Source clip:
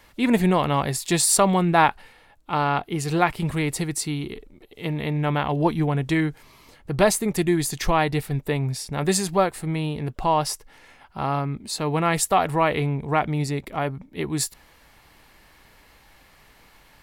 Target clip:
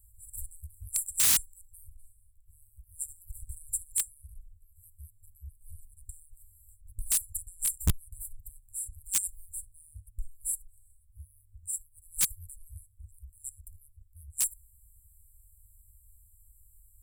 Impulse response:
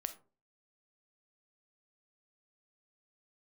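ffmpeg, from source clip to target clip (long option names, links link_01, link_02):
-filter_complex "[0:a]asplit=2[link_01][link_02];[1:a]atrim=start_sample=2205,lowshelf=frequency=170:gain=-5[link_03];[link_02][link_03]afir=irnorm=-1:irlink=0,volume=-12dB[link_04];[link_01][link_04]amix=inputs=2:normalize=0,afftfilt=real='re*(1-between(b*sr/4096,100,7300))':imag='im*(1-between(b*sr/4096,100,7300))':win_size=4096:overlap=0.75,aeval=exprs='(mod(6.68*val(0)+1,2)-1)/6.68':channel_layout=same,equalizer=frequency=560:width_type=o:width=2:gain=-14.5"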